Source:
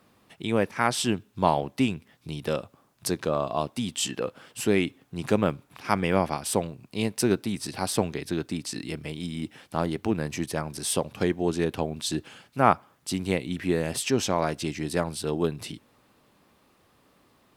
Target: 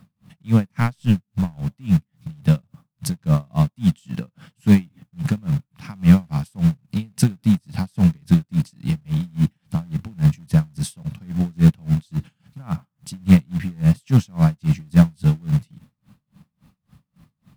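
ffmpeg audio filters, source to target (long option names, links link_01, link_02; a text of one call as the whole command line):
ffmpeg -i in.wav -filter_complex "[0:a]asettb=1/sr,asplit=3[link_01][link_02][link_03];[link_01]atrim=end=0.804[link_04];[link_02]atrim=start=0.8:end=1.7,asetpts=PTS-STARTPTS,afade=type=in:duration=0.004:curve=qsin,afade=type=out:start_time=0.896:duration=0.004:curve=qsin,aeval=exprs='(tanh(3.55*val(0)+0.75)-tanh(0.75))/3.55':channel_layout=same[link_05];[link_03]atrim=start=1.696[link_06];[link_04][link_05]acrossfade=duration=0.004:curve1=hsin:curve2=qsin[link_07];[link_07][link_06]acrossfade=duration=0.004:curve1=qsin:curve2=hsin,lowshelf=frequency=250:width_type=q:width=3:gain=13.5,asplit=2[link_08][link_09];[link_09]acrusher=bits=2:mode=log:mix=0:aa=0.000001,volume=-9.5dB[link_10];[link_08][link_10]amix=inputs=2:normalize=0,aeval=exprs='val(0)*pow(10,-33*(0.5-0.5*cos(2*PI*3.6*n/s))/20)':channel_layout=same" out.wav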